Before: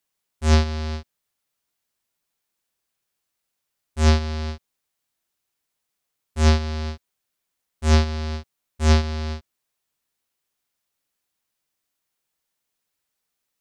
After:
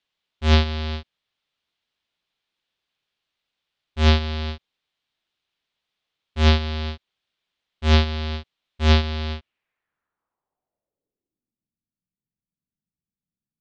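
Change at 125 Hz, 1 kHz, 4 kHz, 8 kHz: 0.0 dB, +0.5 dB, +5.0 dB, -8.5 dB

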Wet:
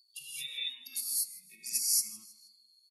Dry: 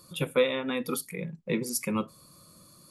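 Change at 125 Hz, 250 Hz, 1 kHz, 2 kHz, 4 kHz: under -30 dB, under -30 dB, under -35 dB, -12.0 dB, +2.0 dB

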